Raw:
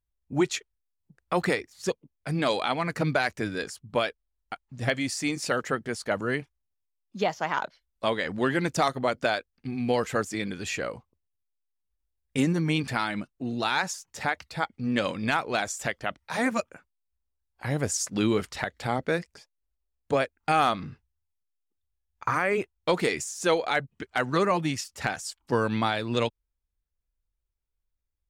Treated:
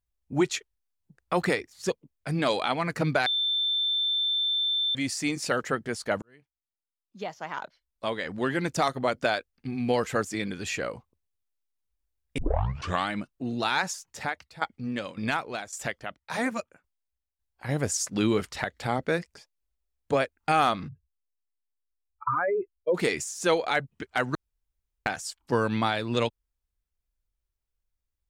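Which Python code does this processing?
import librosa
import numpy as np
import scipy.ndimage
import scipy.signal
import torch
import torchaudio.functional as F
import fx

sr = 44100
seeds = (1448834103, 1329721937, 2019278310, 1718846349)

y = fx.tremolo_shape(x, sr, shape='saw_down', hz=1.8, depth_pct=80, at=(14.06, 17.69))
y = fx.spec_expand(y, sr, power=3.2, at=(20.87, 22.94), fade=0.02)
y = fx.edit(y, sr, fx.bleep(start_s=3.26, length_s=1.69, hz=3550.0, db=-23.5),
    fx.fade_in_span(start_s=6.22, length_s=2.94),
    fx.tape_start(start_s=12.38, length_s=0.73),
    fx.room_tone_fill(start_s=24.35, length_s=0.71), tone=tone)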